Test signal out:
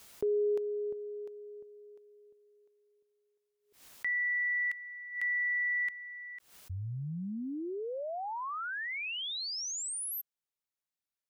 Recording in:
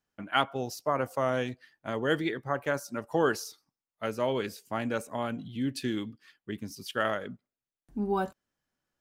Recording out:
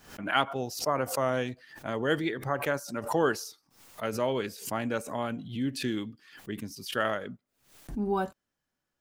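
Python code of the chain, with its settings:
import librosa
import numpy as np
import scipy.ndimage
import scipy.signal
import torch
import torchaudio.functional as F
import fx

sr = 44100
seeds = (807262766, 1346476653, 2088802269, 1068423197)

y = fx.pre_swell(x, sr, db_per_s=110.0)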